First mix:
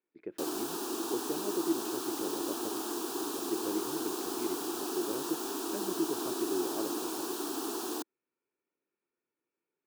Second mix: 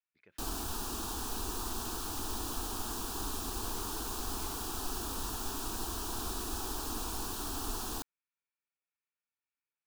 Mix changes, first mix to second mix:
speech: add band-pass 4800 Hz, Q 0.51; master: remove resonant high-pass 340 Hz, resonance Q 3.8

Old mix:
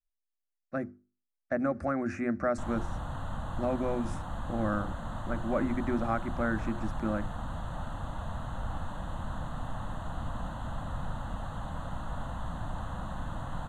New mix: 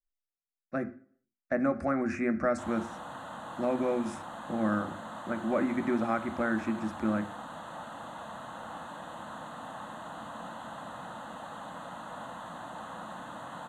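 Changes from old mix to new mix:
background: add HPF 290 Hz 12 dB/oct; reverb: on, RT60 0.55 s

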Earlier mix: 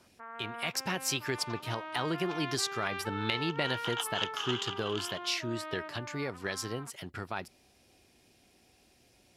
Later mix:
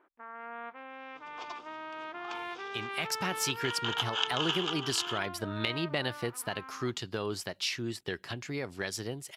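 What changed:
speech: entry +2.35 s; second sound +4.0 dB

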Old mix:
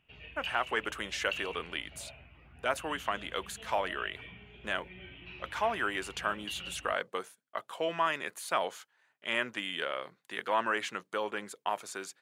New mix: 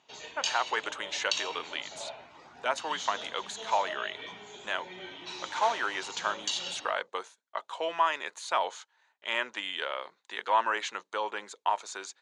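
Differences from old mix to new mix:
background: remove ladder low-pass 2900 Hz, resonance 70%; master: add speaker cabinet 390–7800 Hz, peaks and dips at 920 Hz +8 dB, 3900 Hz +7 dB, 6500 Hz +6 dB

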